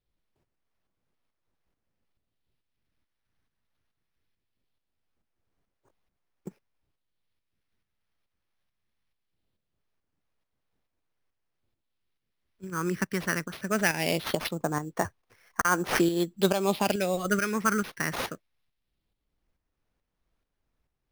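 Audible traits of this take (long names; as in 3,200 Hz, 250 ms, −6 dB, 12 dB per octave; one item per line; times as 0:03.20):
phaser sweep stages 4, 0.21 Hz, lowest notch 670–4,000 Hz
aliases and images of a low sample rate 7,600 Hz, jitter 0%
tremolo saw up 2.3 Hz, depth 55%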